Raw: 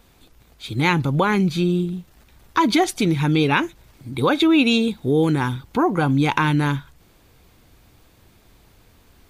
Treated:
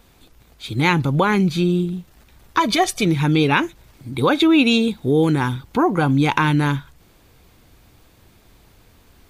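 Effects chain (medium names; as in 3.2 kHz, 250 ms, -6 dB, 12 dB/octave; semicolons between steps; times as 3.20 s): 2.59–3.05 s: comb 1.7 ms, depth 58%; trim +1.5 dB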